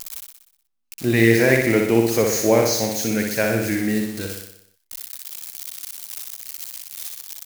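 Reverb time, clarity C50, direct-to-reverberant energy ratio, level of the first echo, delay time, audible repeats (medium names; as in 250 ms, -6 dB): no reverb, no reverb, no reverb, -4.0 dB, 61 ms, 7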